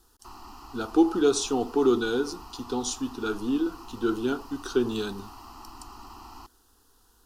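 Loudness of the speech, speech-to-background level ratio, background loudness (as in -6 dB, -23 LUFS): -27.0 LUFS, 19.5 dB, -46.5 LUFS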